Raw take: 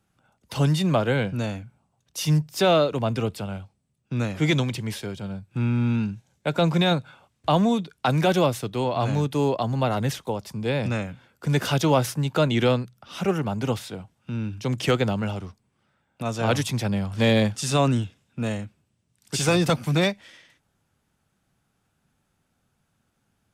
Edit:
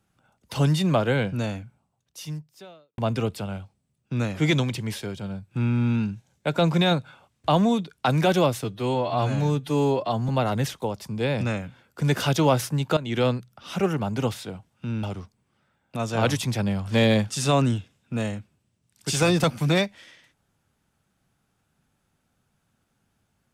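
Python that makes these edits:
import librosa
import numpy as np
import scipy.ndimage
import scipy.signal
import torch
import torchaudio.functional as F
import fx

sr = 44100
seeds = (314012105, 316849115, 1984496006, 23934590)

y = fx.edit(x, sr, fx.fade_out_span(start_s=1.61, length_s=1.37, curve='qua'),
    fx.stretch_span(start_s=8.64, length_s=1.1, factor=1.5),
    fx.fade_in_from(start_s=12.42, length_s=0.34, floor_db=-16.0),
    fx.cut(start_s=14.48, length_s=0.81), tone=tone)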